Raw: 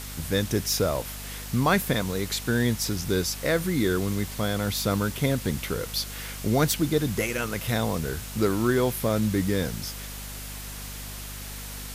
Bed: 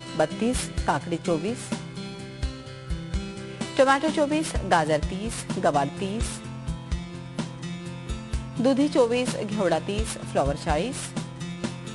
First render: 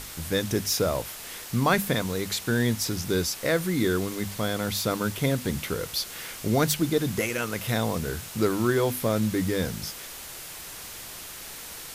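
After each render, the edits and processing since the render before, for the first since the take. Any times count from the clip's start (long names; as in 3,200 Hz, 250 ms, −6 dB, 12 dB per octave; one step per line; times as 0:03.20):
mains-hum notches 50/100/150/200/250 Hz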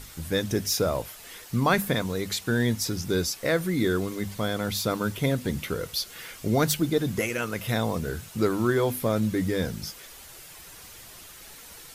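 broadband denoise 8 dB, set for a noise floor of −41 dBFS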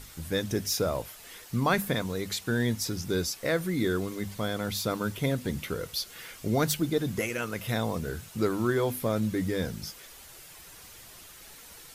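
level −3 dB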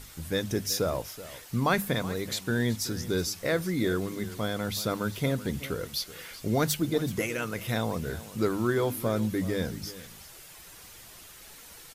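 single-tap delay 377 ms −16 dB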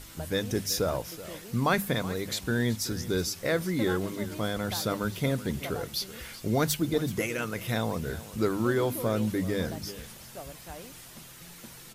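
mix in bed −19.5 dB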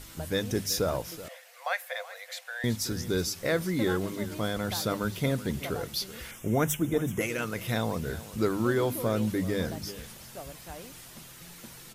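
0:01.28–0:02.64: Chebyshev high-pass with heavy ripple 500 Hz, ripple 9 dB
0:06.31–0:07.21: Butterworth band-reject 4,400 Hz, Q 1.7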